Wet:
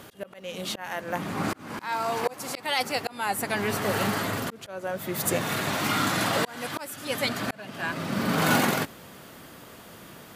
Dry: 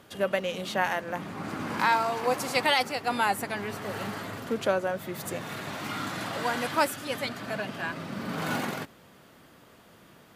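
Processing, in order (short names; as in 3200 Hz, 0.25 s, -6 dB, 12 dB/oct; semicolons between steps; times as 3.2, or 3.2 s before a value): high shelf 6700 Hz +6.5 dB; auto swell 0.684 s; gain +8 dB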